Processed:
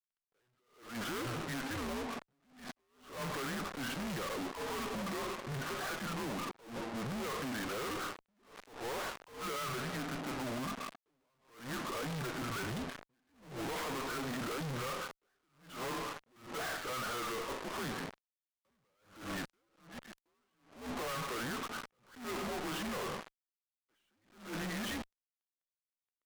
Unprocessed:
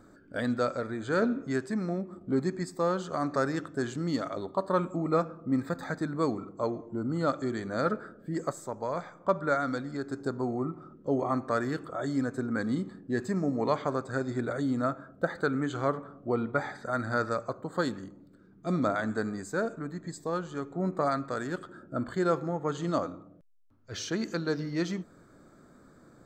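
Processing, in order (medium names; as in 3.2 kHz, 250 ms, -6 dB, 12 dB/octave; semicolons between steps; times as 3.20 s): mistuned SSB -120 Hz 320–3300 Hz; fuzz box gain 45 dB, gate -50 dBFS; bass shelf 380 Hz -9 dB; saturation -39 dBFS, distortion -4 dB; attacks held to a fixed rise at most 120 dB/s; trim +1 dB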